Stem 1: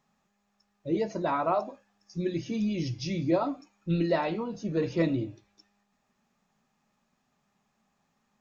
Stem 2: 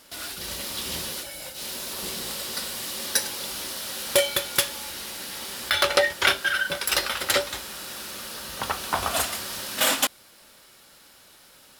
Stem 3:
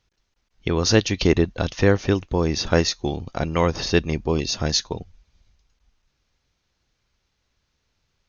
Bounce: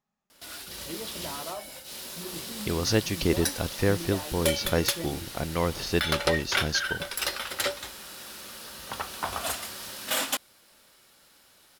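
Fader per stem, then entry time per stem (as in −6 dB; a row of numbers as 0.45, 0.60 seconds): −11.5, −6.0, −7.0 decibels; 0.00, 0.30, 2.00 seconds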